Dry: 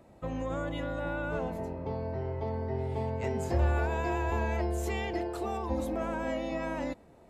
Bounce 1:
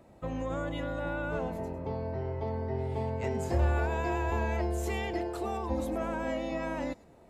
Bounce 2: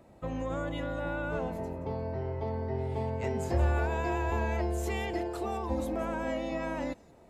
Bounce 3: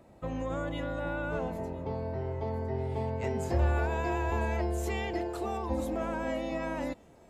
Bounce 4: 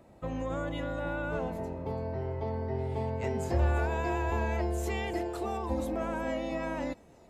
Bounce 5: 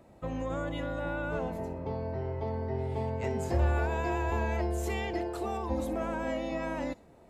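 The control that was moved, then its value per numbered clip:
feedback echo behind a high-pass, time: 103 ms, 175 ms, 1008 ms, 336 ms, 61 ms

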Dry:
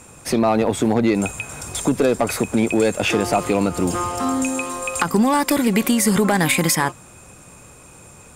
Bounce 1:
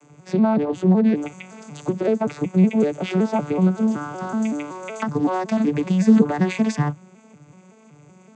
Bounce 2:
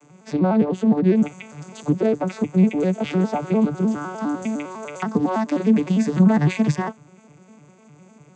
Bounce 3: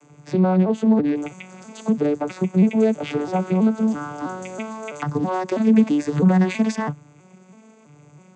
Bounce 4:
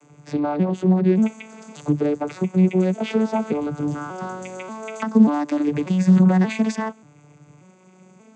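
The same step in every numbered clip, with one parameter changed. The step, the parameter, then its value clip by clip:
vocoder on a broken chord, a note every: 188 ms, 101 ms, 327 ms, 585 ms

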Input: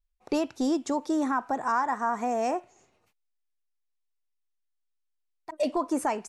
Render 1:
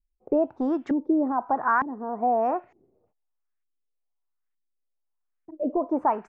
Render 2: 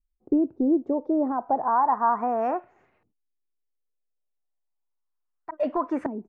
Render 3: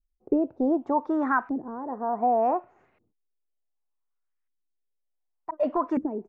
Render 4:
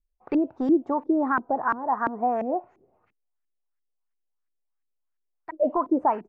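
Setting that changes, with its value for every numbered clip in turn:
LFO low-pass, rate: 1.1 Hz, 0.33 Hz, 0.67 Hz, 2.9 Hz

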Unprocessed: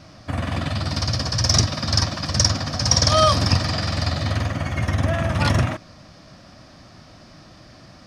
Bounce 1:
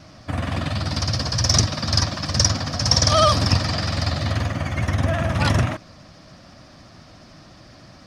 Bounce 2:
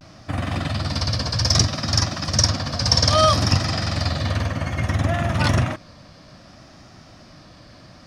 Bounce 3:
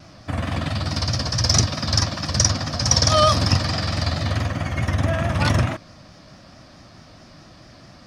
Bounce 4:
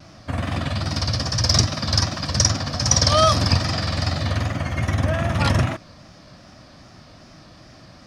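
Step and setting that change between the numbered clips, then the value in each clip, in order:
vibrato, rate: 14 Hz, 0.62 Hz, 4.6 Hz, 2.5 Hz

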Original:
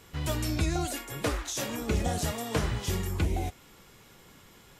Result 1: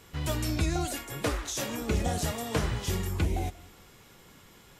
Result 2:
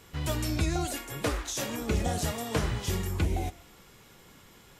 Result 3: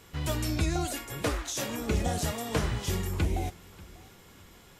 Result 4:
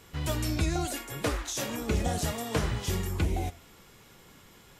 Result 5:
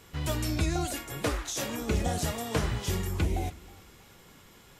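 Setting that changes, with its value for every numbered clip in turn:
modulated delay, time: 186 ms, 122 ms, 591 ms, 83 ms, 313 ms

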